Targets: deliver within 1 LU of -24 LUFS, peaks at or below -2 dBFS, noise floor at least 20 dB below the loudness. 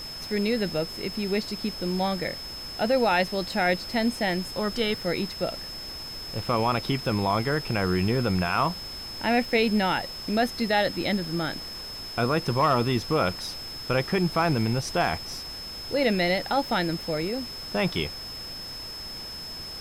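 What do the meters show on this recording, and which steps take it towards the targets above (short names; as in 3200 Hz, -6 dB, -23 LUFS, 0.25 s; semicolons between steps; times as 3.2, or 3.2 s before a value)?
steady tone 5200 Hz; tone level -36 dBFS; noise floor -38 dBFS; noise floor target -47 dBFS; loudness -27.0 LUFS; peak -11.0 dBFS; loudness target -24.0 LUFS
-> notch 5200 Hz, Q 30; denoiser 9 dB, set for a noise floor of -38 dBFS; gain +3 dB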